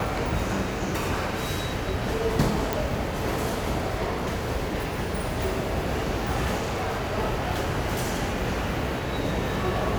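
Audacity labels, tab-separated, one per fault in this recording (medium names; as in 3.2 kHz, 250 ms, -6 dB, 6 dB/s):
2.730000	2.730000	pop
6.570000	7.130000	clipped -24.5 dBFS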